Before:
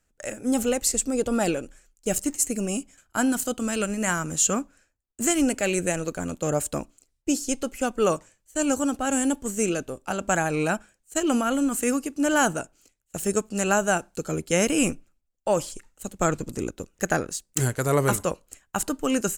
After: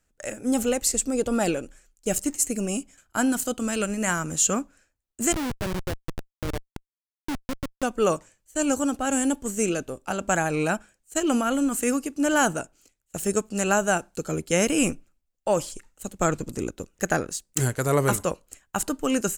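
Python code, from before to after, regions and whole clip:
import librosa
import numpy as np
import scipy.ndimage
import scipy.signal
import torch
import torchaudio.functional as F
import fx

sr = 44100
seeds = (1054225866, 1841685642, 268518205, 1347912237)

y = fx.chain(x, sr, fx.self_delay(depth_ms=0.096),
    fx.schmitt(flips_db=-20.5), at=(5.32, 7.83))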